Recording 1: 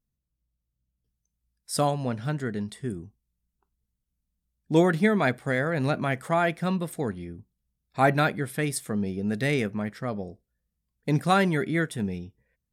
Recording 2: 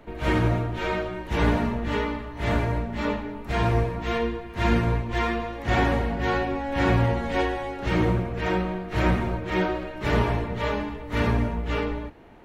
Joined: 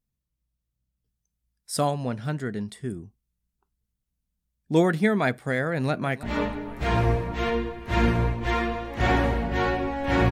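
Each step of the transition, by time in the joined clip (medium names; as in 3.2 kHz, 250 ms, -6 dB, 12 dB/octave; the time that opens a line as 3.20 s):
recording 1
5.69–6.23 s: echo throw 320 ms, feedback 55%, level -17.5 dB
6.23 s: go over to recording 2 from 2.91 s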